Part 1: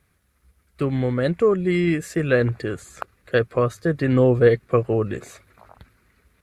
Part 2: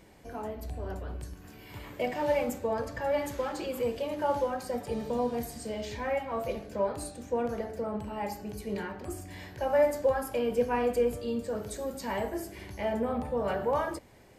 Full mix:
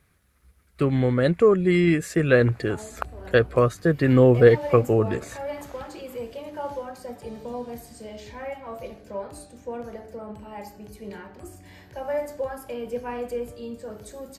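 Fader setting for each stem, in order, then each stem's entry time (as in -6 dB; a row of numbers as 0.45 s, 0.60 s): +1.0 dB, -3.5 dB; 0.00 s, 2.35 s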